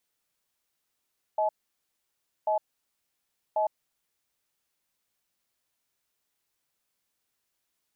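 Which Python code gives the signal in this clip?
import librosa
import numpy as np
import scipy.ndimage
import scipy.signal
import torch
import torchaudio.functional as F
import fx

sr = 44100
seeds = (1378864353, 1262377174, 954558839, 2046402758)

y = fx.cadence(sr, length_s=2.37, low_hz=632.0, high_hz=855.0, on_s=0.11, off_s=0.98, level_db=-25.5)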